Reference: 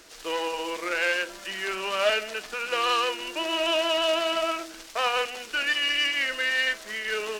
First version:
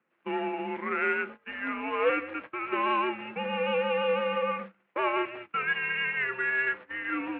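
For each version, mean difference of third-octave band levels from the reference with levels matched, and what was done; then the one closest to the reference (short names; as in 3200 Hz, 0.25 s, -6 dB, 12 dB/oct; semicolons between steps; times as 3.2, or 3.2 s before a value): 15.0 dB: gate -37 dBFS, range -21 dB; air absorption 84 m; mistuned SSB -130 Hz 300–2600 Hz; gain -1 dB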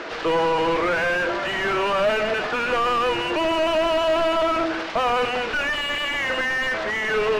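9.0 dB: air absorption 140 m; overdrive pedal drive 36 dB, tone 1000 Hz, clips at -11 dBFS; high shelf 7000 Hz -9 dB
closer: second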